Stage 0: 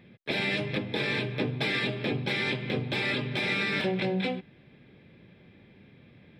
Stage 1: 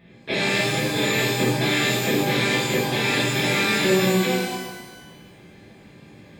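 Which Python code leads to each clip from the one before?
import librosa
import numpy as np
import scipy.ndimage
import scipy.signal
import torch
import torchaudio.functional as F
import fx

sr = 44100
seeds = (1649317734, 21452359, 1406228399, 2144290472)

y = fx.rev_shimmer(x, sr, seeds[0], rt60_s=1.2, semitones=12, shimmer_db=-8, drr_db=-7.0)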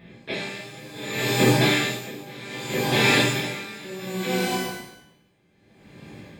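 y = x * 10.0 ** (-22 * (0.5 - 0.5 * np.cos(2.0 * np.pi * 0.65 * np.arange(len(x)) / sr)) / 20.0)
y = y * librosa.db_to_amplitude(4.0)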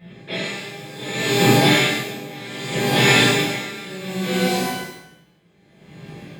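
y = fx.rev_gated(x, sr, seeds[1], gate_ms=240, shape='falling', drr_db=-7.5)
y = y * librosa.db_to_amplitude(-3.5)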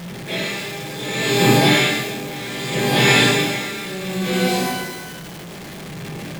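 y = x + 0.5 * 10.0 ** (-29.0 / 20.0) * np.sign(x)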